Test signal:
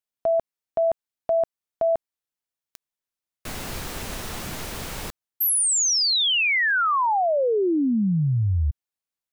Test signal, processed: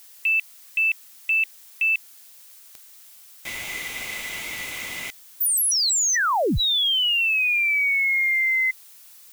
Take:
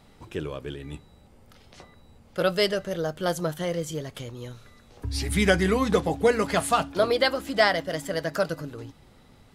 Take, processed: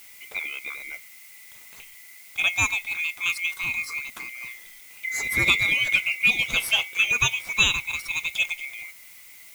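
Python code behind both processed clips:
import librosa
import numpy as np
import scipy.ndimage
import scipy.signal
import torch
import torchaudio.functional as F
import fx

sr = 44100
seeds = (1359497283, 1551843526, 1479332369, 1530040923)

y = fx.band_swap(x, sr, width_hz=2000)
y = fx.dmg_noise_colour(y, sr, seeds[0], colour='blue', level_db=-48.0)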